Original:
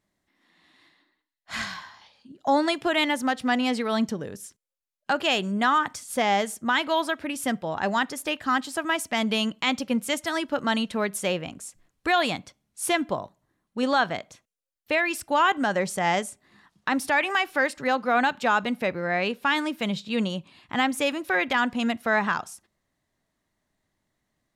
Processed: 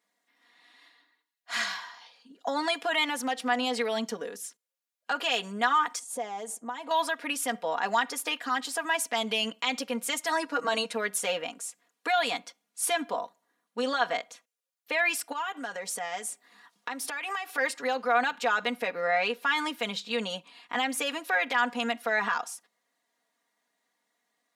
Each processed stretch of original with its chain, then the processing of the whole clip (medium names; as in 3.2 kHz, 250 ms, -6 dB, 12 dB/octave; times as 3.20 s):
5.99–6.91 s: low-pass 9.3 kHz + compression 4:1, threshold -31 dBFS + high-order bell 2.6 kHz -10.5 dB 2.4 oct
10.28–10.93 s: steep low-pass 12 kHz + peaking EQ 3.3 kHz -12.5 dB 0.23 oct + comb 6.3 ms, depth 94%
15.32–17.58 s: treble shelf 8.1 kHz +5 dB + compression 8:1, threshold -31 dBFS
whole clip: peak limiter -18.5 dBFS; high-pass 470 Hz 12 dB/octave; comb 4.2 ms, depth 82%